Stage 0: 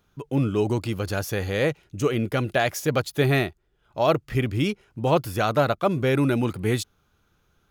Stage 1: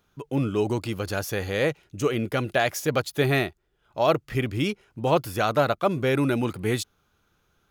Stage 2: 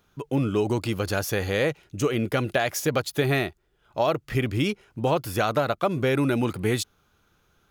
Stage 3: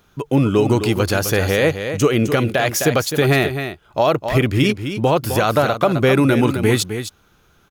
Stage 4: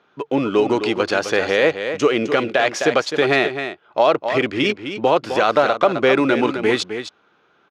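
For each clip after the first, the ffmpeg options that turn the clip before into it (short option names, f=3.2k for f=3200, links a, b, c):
-af "lowshelf=f=210:g=-4.5"
-af "acompressor=threshold=-22dB:ratio=6,volume=3dB"
-filter_complex "[0:a]asplit=2[a][b];[b]aecho=0:1:259:0.335[c];[a][c]amix=inputs=2:normalize=0,alimiter=level_in=12.5dB:limit=-1dB:release=50:level=0:latency=1,volume=-4dB"
-af "adynamicsmooth=sensitivity=7:basefreq=3.7k,highpass=330,lowpass=4.8k,volume=1.5dB"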